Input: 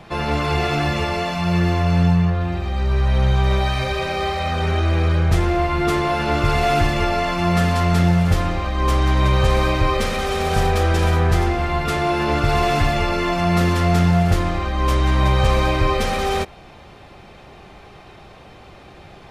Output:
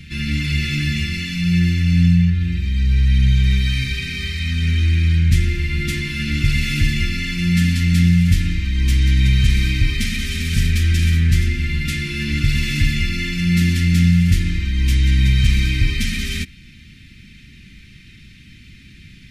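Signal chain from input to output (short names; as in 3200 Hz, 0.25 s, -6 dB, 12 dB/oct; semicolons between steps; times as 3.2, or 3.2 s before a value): elliptic band-stop 250–2000 Hz, stop band 70 dB; reverse echo 0.521 s -22 dB; gain +3.5 dB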